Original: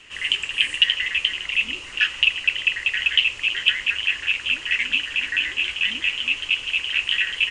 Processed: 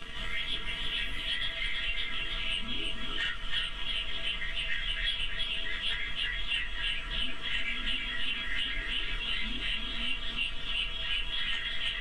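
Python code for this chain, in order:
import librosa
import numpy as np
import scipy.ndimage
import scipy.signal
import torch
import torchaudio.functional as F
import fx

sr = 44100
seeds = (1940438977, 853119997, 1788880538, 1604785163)

p1 = fx.partial_stretch(x, sr, pct=111)
p2 = fx.peak_eq(p1, sr, hz=1700.0, db=5.5, octaves=0.65)
p3 = fx.fold_sine(p2, sr, drive_db=8, ceiling_db=-8.5)
p4 = p2 + F.gain(torch.from_numpy(p3), -7.5).numpy()
p5 = fx.riaa(p4, sr, side='playback')
p6 = fx.stretch_grains(p5, sr, factor=1.6, grain_ms=23.0)
p7 = fx.comb_fb(p6, sr, f0_hz=330.0, decay_s=0.18, harmonics='all', damping=0.0, mix_pct=80)
p8 = fx.formant_shift(p7, sr, semitones=-3)
p9 = p8 + fx.echo_single(p8, sr, ms=327, db=-5.5, dry=0)
y = fx.band_squash(p9, sr, depth_pct=70)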